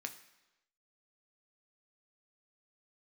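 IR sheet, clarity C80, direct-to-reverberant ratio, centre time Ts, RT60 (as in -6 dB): 15.0 dB, 5.5 dB, 9 ms, 1.0 s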